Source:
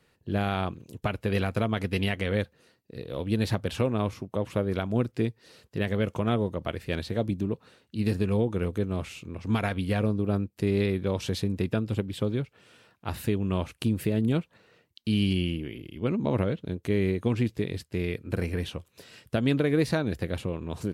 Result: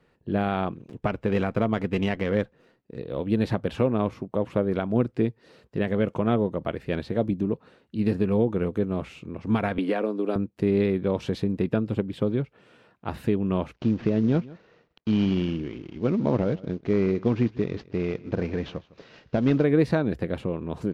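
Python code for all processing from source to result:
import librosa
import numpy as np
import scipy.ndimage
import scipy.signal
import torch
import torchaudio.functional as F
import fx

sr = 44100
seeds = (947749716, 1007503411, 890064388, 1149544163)

y = fx.chain(x, sr, fx.notch(hz=4300.0, q=17.0),
    fx.running_max(window=3), at=(0.71, 2.99))
y = fx.chain(y, sr, fx.highpass(hz=270.0, slope=24),
    fx.resample_bad(factor=2, down='none', up='filtered'),
    fx.band_squash(depth_pct=100), at=(9.78, 10.36))
y = fx.chain(y, sr, fx.cvsd(bps=32000),
    fx.echo_single(ms=157, db=-20.5), at=(13.73, 19.64))
y = fx.lowpass(y, sr, hz=1300.0, slope=6)
y = fx.peak_eq(y, sr, hz=91.0, db=-9.0, octaves=0.64)
y = y * 10.0 ** (4.5 / 20.0)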